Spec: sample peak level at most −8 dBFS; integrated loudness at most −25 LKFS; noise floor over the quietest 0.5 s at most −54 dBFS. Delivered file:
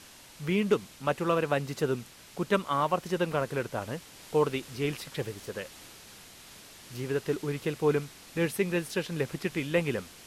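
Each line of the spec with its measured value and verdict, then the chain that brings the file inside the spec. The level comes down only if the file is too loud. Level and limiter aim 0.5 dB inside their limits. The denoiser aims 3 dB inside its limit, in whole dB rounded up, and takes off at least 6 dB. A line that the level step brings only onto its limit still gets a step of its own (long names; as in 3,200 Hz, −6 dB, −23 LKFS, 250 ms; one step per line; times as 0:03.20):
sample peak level −13.0 dBFS: in spec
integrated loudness −31.0 LKFS: in spec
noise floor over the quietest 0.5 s −51 dBFS: out of spec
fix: broadband denoise 6 dB, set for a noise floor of −51 dBFS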